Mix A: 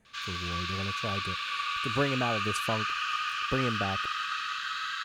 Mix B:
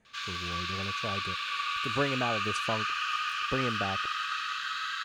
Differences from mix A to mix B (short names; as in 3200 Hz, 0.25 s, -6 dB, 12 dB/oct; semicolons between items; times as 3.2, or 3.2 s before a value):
speech: add LPF 7100 Hz; master: add low shelf 260 Hz -4 dB